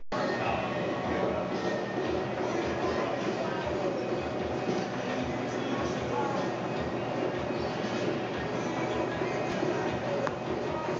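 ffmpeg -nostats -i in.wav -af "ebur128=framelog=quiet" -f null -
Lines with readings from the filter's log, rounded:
Integrated loudness:
  I:         -31.4 LUFS
  Threshold: -41.4 LUFS
Loudness range:
  LRA:         0.9 LU
  Threshold: -51.5 LUFS
  LRA low:   -31.8 LUFS
  LRA high:  -30.9 LUFS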